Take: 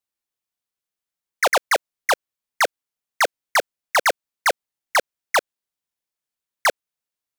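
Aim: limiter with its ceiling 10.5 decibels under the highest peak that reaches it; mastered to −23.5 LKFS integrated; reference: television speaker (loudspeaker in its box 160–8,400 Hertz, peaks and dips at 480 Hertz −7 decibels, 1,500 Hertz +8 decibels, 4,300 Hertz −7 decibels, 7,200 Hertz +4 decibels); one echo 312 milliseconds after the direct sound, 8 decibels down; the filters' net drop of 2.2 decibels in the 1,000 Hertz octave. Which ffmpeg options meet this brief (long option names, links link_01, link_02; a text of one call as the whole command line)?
ffmpeg -i in.wav -af "equalizer=frequency=1000:width_type=o:gain=-5,alimiter=limit=-23.5dB:level=0:latency=1,highpass=frequency=160:width=0.5412,highpass=frequency=160:width=1.3066,equalizer=frequency=480:width_type=q:width=4:gain=-7,equalizer=frequency=1500:width_type=q:width=4:gain=8,equalizer=frequency=4300:width_type=q:width=4:gain=-7,equalizer=frequency=7200:width_type=q:width=4:gain=4,lowpass=frequency=8400:width=0.5412,lowpass=frequency=8400:width=1.3066,aecho=1:1:312:0.398,volume=9dB" out.wav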